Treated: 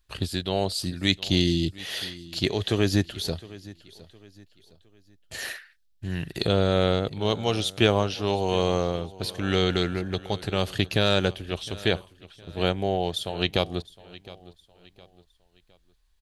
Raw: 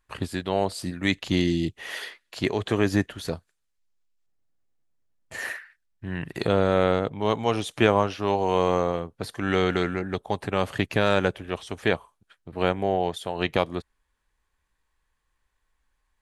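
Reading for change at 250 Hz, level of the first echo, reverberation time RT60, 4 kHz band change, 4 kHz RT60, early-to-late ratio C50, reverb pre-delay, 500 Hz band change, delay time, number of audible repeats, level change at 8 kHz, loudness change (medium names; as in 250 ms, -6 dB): -0.5 dB, -19.5 dB, no reverb, +7.0 dB, no reverb, no reverb, no reverb, -1.5 dB, 712 ms, 2, +4.0 dB, 0.0 dB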